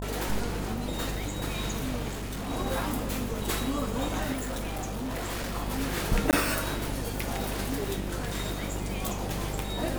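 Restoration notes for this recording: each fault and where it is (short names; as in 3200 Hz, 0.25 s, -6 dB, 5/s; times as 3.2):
buzz 50 Hz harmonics 20 -35 dBFS
2.08–2.51 clipped -31 dBFS
4.32–5.56 clipped -29.5 dBFS
6.31–6.33 gap 18 ms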